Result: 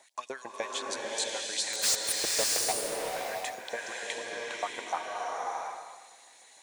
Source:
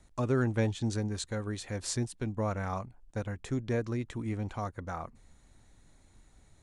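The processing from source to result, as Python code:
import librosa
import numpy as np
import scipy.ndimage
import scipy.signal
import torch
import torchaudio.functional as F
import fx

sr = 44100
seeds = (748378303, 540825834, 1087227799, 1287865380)

p1 = fx.peak_eq(x, sr, hz=1300.0, db=-13.0, octaves=0.3)
p2 = fx.over_compress(p1, sr, threshold_db=-39.0, ratio=-1.0)
p3 = p1 + (p2 * 10.0 ** (-1.0 / 20.0))
p4 = fx.filter_lfo_highpass(p3, sr, shape='saw_up', hz=6.7, low_hz=580.0, high_hz=7400.0, q=1.9)
p5 = fx.spec_box(p4, sr, start_s=1.95, length_s=1.17, low_hz=770.0, high_hz=8500.0, gain_db=-14)
p6 = fx.quant_companded(p5, sr, bits=2, at=(1.73, 2.72))
p7 = fx.low_shelf(p6, sr, hz=150.0, db=-5.5)
y = fx.rev_bloom(p7, sr, seeds[0], attack_ms=670, drr_db=-3.0)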